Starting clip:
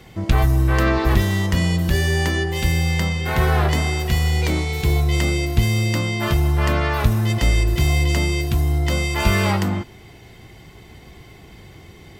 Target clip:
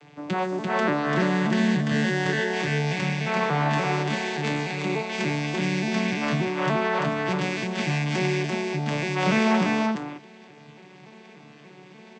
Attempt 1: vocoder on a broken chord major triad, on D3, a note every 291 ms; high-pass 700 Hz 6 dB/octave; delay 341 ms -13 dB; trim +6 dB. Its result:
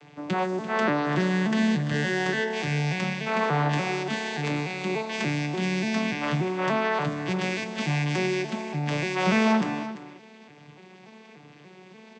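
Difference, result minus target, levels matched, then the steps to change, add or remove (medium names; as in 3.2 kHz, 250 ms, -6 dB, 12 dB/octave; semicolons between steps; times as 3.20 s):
echo-to-direct -10 dB
change: delay 341 ms -3 dB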